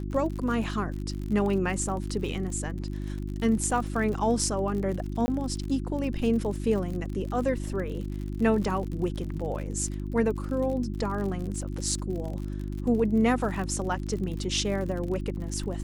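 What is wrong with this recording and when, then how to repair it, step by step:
crackle 52/s -34 dBFS
hum 50 Hz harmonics 7 -33 dBFS
5.26–5.28 gap 20 ms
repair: de-click; de-hum 50 Hz, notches 7; interpolate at 5.26, 20 ms

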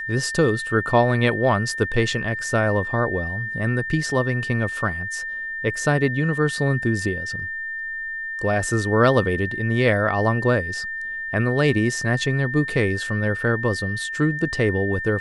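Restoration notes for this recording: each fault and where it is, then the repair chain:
tone 1800 Hz -27 dBFS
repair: notch 1800 Hz, Q 30

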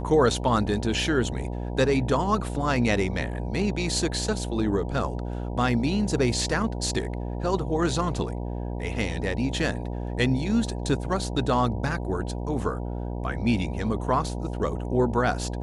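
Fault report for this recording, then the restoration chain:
buzz 60 Hz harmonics 16 -31 dBFS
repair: de-hum 60 Hz, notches 16

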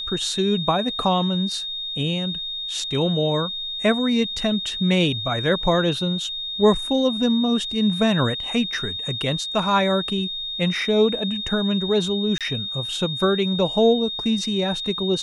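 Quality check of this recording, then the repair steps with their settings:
tone 3700 Hz -27 dBFS
12.38–12.41 gap 27 ms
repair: notch 3700 Hz, Q 30; interpolate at 12.38, 27 ms

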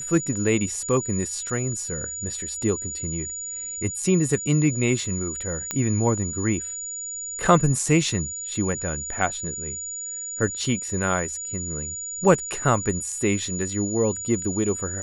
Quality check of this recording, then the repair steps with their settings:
tone 6900 Hz -30 dBFS
5.71 pop -10 dBFS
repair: de-click; notch 6900 Hz, Q 30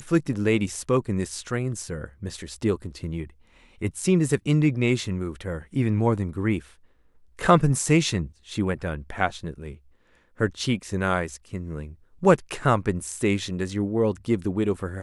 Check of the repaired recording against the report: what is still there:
none

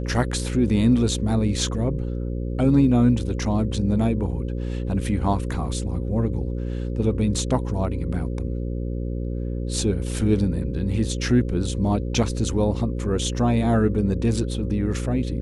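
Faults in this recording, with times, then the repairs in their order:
buzz 60 Hz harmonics 9 -27 dBFS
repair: de-hum 60 Hz, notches 9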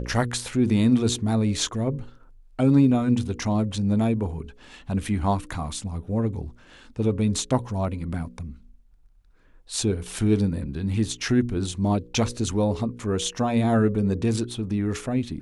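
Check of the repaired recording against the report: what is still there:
none

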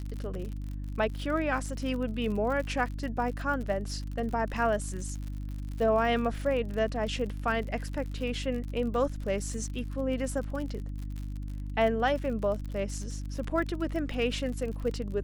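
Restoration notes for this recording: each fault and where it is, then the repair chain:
crackle 58/s -36 dBFS
hum 50 Hz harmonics 6 -36 dBFS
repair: de-click; de-hum 50 Hz, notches 6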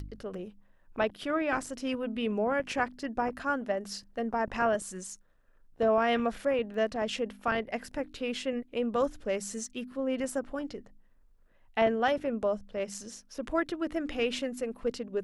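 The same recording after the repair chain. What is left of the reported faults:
none

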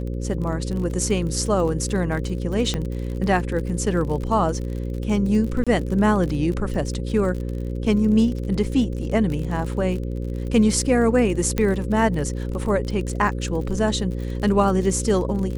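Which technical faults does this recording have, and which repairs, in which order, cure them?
buzz 60 Hz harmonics 9 -27 dBFS
crackle 41/s -29 dBFS
2.74 pop -11 dBFS
5.64–5.67 gap 26 ms
11.58 pop -9 dBFS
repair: de-click; de-hum 60 Hz, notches 9; interpolate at 5.64, 26 ms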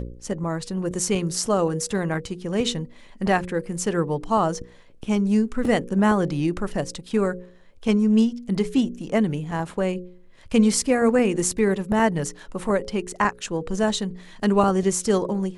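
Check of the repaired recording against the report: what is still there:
11.58 pop

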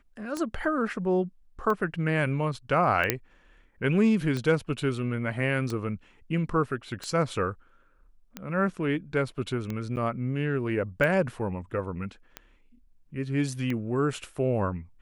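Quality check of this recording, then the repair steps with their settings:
tick 45 rpm -19 dBFS
3.1 pop -5 dBFS
9.96–9.97 gap 9.1 ms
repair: de-click; interpolate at 9.96, 9.1 ms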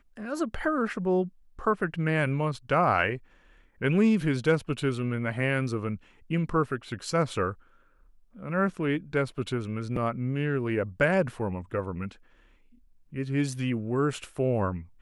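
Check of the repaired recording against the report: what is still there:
none

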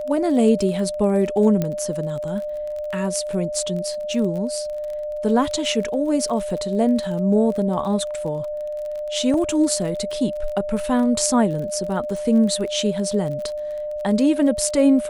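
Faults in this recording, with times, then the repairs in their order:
crackle 30/s -29 dBFS
tone 600 Hz -25 dBFS
1.62 pop -10 dBFS
9.34 gap 2.1 ms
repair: de-click; notch 600 Hz, Q 30; interpolate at 9.34, 2.1 ms

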